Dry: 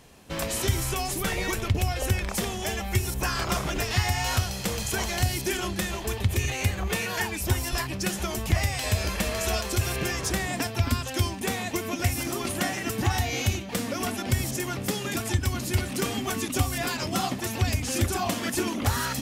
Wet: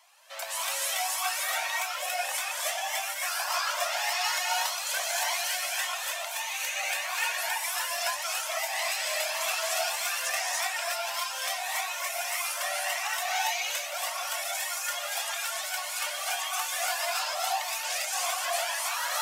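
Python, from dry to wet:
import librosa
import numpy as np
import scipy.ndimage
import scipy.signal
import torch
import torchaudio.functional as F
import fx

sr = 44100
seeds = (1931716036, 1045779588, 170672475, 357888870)

y = scipy.signal.sosfilt(scipy.signal.butter(16, 580.0, 'highpass', fs=sr, output='sos'), x)
y = fx.over_compress(y, sr, threshold_db=-28.0, ratio=-0.5)
y = fx.rev_gated(y, sr, seeds[0], gate_ms=330, shape='rising', drr_db=-4.5)
y = fx.comb_cascade(y, sr, direction='rising', hz=1.7)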